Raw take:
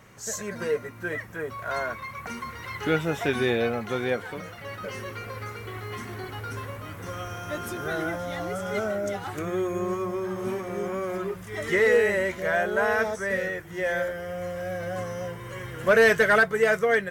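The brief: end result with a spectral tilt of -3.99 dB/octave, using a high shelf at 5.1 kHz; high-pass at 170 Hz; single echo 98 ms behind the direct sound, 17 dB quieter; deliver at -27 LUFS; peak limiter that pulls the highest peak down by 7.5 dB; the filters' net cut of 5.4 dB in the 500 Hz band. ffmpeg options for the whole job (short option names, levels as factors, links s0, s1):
-af "highpass=170,equalizer=f=500:t=o:g=-6.5,highshelf=f=5100:g=6.5,alimiter=limit=0.133:level=0:latency=1,aecho=1:1:98:0.141,volume=1.58"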